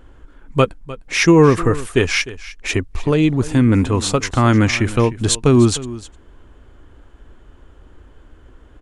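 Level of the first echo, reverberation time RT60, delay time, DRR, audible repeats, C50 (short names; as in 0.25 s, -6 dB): -17.0 dB, none, 0.304 s, none, 1, none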